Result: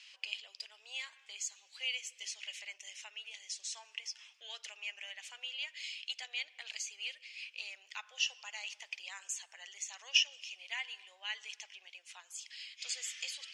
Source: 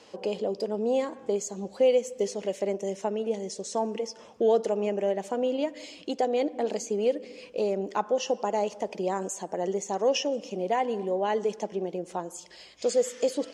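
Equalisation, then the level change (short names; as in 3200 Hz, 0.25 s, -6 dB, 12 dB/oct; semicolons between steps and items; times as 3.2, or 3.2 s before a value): ladder high-pass 2100 Hz, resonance 45%; high shelf 8200 Hz -9.5 dB; +9.0 dB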